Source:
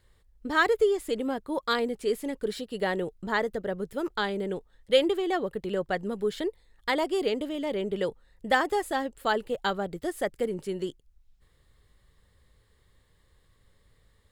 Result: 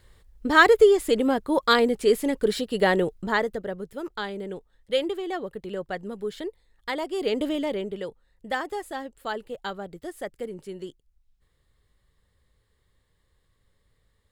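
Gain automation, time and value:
3 s +7.5 dB
3.89 s -3 dB
7.11 s -3 dB
7.48 s +7 dB
8.03 s -5 dB

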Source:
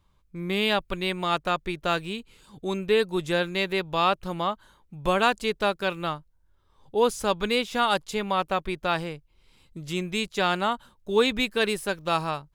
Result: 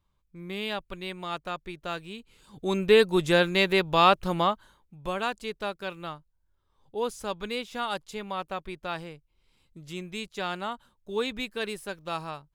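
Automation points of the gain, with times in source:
2.08 s -8.5 dB
2.84 s +3.5 dB
4.42 s +3.5 dB
4.98 s -8 dB

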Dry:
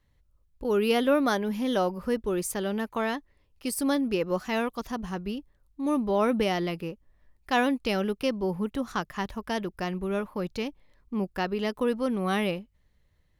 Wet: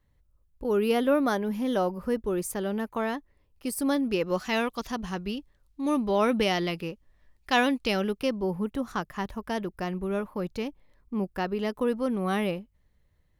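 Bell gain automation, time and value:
bell 4000 Hz 2.3 oct
3.73 s -5 dB
4.37 s +5 dB
7.73 s +5 dB
8.49 s -4 dB

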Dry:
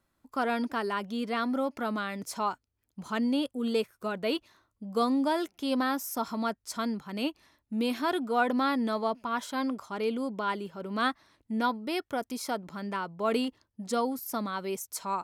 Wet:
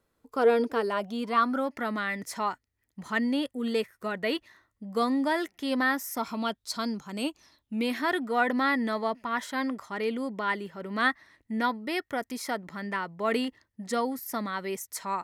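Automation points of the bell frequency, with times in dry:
bell +15 dB 0.27 oct
0.79 s 460 Hz
1.71 s 1900 Hz
6.12 s 1900 Hz
7.26 s 8800 Hz
7.88 s 1900 Hz

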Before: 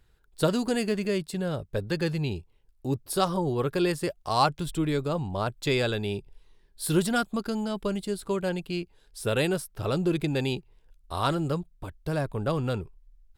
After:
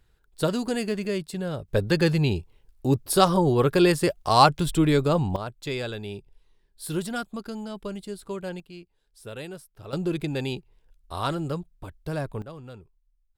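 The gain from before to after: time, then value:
-0.5 dB
from 1.68 s +6.5 dB
from 5.36 s -5 dB
from 8.6 s -12 dB
from 9.93 s -1.5 dB
from 12.42 s -14 dB

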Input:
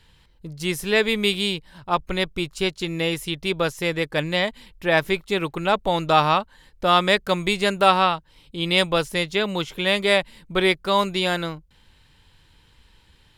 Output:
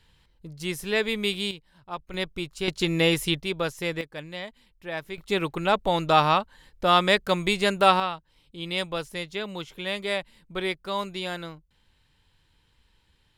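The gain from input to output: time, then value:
-5.5 dB
from 1.51 s -13 dB
from 2.14 s -6 dB
from 2.68 s +2.5 dB
from 3.4 s -5 dB
from 4.01 s -14 dB
from 5.18 s -2 dB
from 8 s -9.5 dB

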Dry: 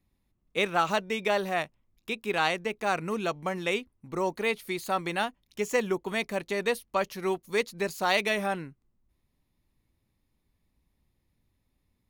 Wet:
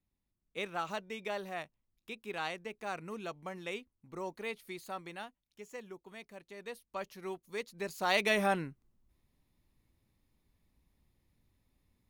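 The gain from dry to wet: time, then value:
4.76 s -11.5 dB
5.65 s -19.5 dB
6.5 s -19.5 dB
7.02 s -12 dB
7.61 s -12 dB
8.41 s 0 dB

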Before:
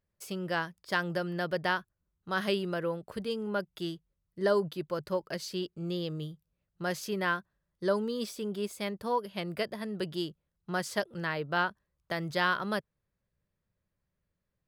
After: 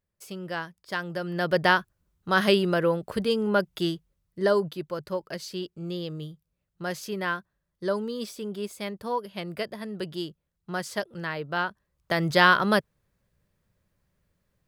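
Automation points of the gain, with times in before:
1.12 s -1 dB
1.57 s +9 dB
3.82 s +9 dB
4.94 s +1 dB
11.64 s +1 dB
12.27 s +10 dB

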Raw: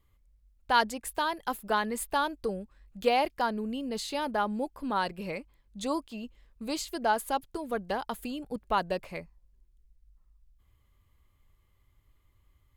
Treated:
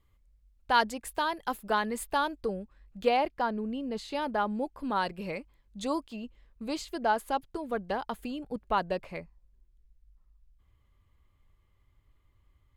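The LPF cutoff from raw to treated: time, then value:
LPF 6 dB/oct
7800 Hz
from 2.41 s 3900 Hz
from 3.17 s 2100 Hz
from 4.12 s 3900 Hz
from 4.79 s 7200 Hz
from 6.16 s 3700 Hz

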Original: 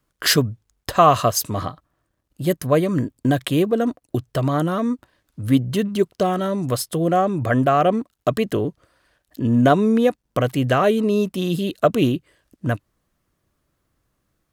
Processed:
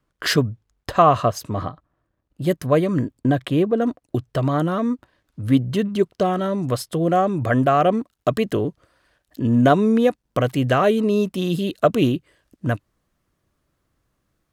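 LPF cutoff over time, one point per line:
LPF 6 dB/oct
3100 Hz
from 1.02 s 1700 Hz
from 2.42 s 4700 Hz
from 3.21 s 2000 Hz
from 3.82 s 4500 Hz
from 7.08 s 9400 Hz

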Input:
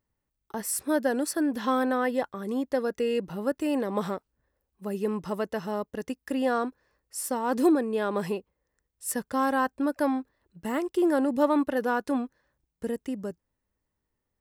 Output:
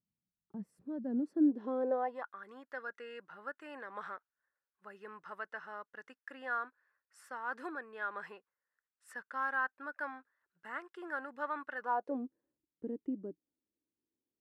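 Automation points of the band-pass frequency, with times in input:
band-pass, Q 3.9
0.96 s 180 Hz
1.89 s 480 Hz
2.28 s 1500 Hz
11.78 s 1500 Hz
12.23 s 310 Hz

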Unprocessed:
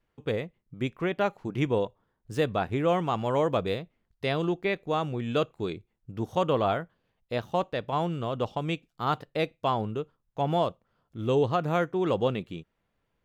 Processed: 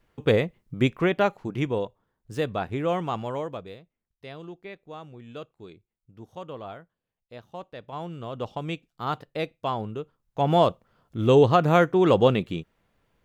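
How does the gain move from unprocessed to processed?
0.78 s +9 dB
1.74 s -1 dB
3.16 s -1 dB
3.73 s -13 dB
7.45 s -13 dB
8.55 s -1.5 dB
10 s -1.5 dB
10.67 s +7.5 dB

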